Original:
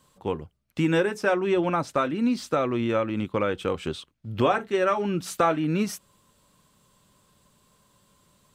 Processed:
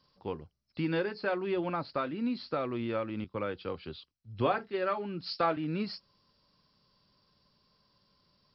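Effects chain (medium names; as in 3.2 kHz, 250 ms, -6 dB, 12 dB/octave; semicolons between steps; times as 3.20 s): knee-point frequency compression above 3.9 kHz 4:1; 3.24–5.57 s: three bands expanded up and down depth 70%; trim -8.5 dB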